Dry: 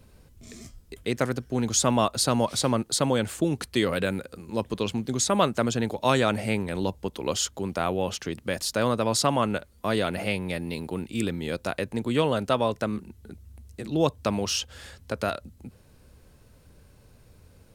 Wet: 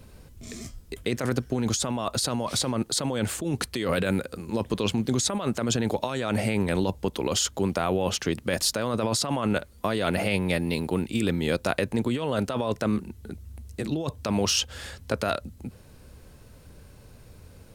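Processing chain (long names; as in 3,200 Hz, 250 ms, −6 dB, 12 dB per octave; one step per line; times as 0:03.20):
compressor whose output falls as the input rises −28 dBFS, ratio −1
level +2.5 dB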